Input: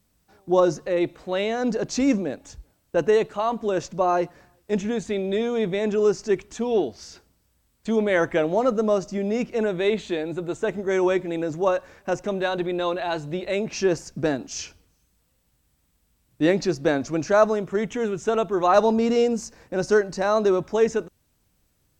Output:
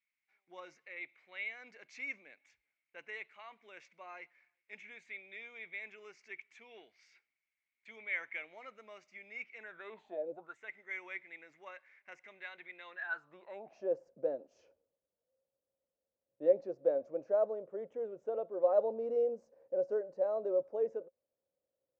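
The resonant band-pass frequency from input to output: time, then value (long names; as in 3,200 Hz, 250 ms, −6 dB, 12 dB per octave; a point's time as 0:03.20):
resonant band-pass, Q 12
0:09.58 2,200 Hz
0:10.31 480 Hz
0:10.57 2,100 Hz
0:12.85 2,100 Hz
0:13.92 540 Hz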